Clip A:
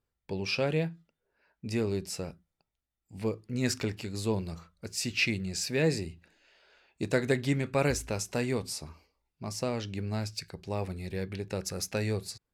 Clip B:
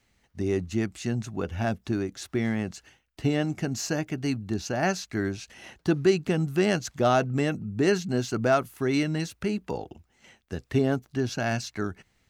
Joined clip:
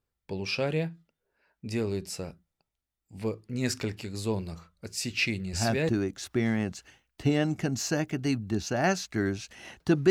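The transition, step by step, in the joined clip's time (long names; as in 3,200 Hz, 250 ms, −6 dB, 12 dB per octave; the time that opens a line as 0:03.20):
clip A
0:05.71: continue with clip B from 0:01.70, crossfade 0.36 s logarithmic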